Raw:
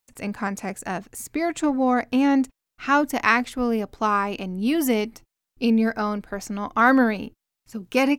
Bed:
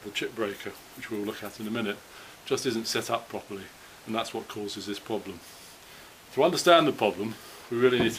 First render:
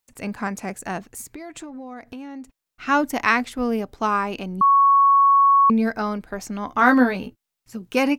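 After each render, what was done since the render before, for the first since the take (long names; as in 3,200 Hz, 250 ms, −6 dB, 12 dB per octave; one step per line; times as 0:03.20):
0:01.21–0:02.87: downward compressor 10 to 1, threshold −33 dBFS
0:04.61–0:05.70: beep over 1,110 Hz −11.5 dBFS
0:06.67–0:07.76: double-tracking delay 16 ms −5 dB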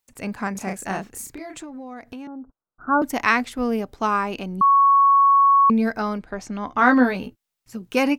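0:00.52–0:01.58: double-tracking delay 31 ms −3.5 dB
0:02.27–0:03.02: Butterworth low-pass 1,500 Hz 96 dB per octave
0:06.20–0:07.04: high-frequency loss of the air 59 metres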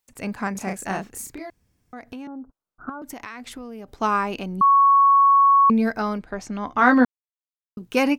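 0:01.50–0:01.93: fill with room tone
0:02.89–0:03.88: downward compressor 12 to 1, threshold −32 dBFS
0:07.05–0:07.77: silence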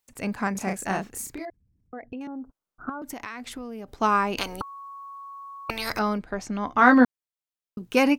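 0:01.45–0:02.21: spectral envelope exaggerated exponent 2
0:04.37–0:05.99: every bin compressed towards the loudest bin 10 to 1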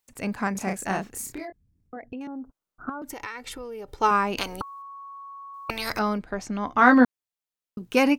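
0:01.21–0:01.97: double-tracking delay 23 ms −7.5 dB
0:03.12–0:04.11: comb filter 2.2 ms
0:04.82–0:05.54: high-shelf EQ 5,000 Hz −11 dB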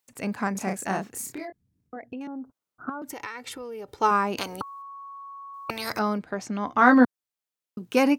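high-pass filter 110 Hz 12 dB per octave
dynamic equaliser 2,700 Hz, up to −4 dB, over −37 dBFS, Q 1.1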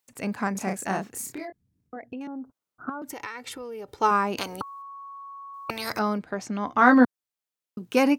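no processing that can be heard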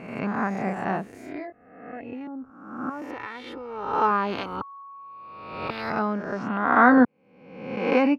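peak hold with a rise ahead of every peak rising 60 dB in 0.95 s
high-frequency loss of the air 330 metres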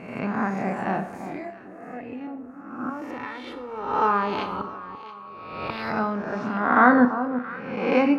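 delay that swaps between a low-pass and a high-pass 338 ms, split 1,200 Hz, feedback 51%, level −10 dB
four-comb reverb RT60 0.47 s, combs from 25 ms, DRR 8.5 dB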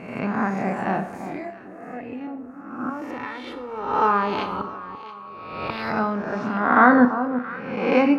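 level +2 dB
brickwall limiter −1 dBFS, peak gain reduction 1 dB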